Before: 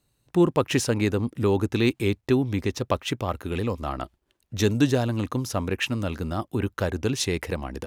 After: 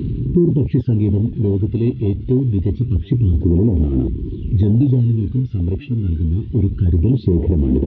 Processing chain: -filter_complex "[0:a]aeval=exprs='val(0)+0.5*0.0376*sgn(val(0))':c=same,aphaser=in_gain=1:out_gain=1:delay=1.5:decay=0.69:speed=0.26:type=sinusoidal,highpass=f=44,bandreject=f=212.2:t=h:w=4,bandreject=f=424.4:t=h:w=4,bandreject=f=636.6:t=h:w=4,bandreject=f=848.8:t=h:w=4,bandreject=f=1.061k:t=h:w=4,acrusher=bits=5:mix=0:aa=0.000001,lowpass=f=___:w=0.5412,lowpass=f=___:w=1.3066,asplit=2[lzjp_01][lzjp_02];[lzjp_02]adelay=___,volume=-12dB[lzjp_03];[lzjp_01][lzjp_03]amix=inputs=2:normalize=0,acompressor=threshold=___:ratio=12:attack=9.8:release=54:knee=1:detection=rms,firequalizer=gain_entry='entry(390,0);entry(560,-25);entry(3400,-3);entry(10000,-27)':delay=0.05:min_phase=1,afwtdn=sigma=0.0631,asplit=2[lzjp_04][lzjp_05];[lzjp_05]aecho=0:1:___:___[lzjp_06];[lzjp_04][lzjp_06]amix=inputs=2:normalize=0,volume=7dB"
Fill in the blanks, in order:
3.3k, 3.3k, 24, -17dB, 994, 0.0668